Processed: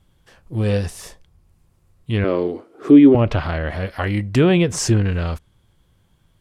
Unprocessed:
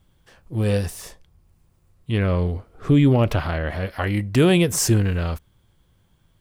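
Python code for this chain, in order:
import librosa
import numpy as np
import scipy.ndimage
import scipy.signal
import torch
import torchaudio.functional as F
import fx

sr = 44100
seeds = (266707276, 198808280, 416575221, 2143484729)

y = fx.highpass_res(x, sr, hz=320.0, q=3.6, at=(2.24, 3.15))
y = fx.env_lowpass_down(y, sr, base_hz=2800.0, full_db=-11.0)
y = y * 10.0 ** (1.5 / 20.0)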